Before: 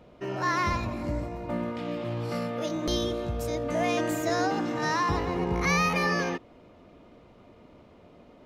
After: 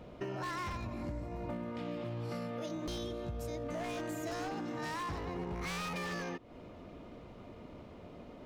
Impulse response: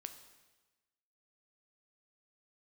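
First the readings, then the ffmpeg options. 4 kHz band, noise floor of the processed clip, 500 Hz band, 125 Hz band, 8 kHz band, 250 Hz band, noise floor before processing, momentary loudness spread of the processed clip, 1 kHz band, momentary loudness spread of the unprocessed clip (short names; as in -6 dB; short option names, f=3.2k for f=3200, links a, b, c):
-10.5 dB, -52 dBFS, -10.5 dB, -9.0 dB, -11.0 dB, -10.0 dB, -54 dBFS, 13 LU, -12.0 dB, 8 LU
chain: -af "aeval=exprs='0.0794*(abs(mod(val(0)/0.0794+3,4)-2)-1)':c=same,lowshelf=f=210:g=3.5,acompressor=threshold=-38dB:ratio=10,volume=1.5dB"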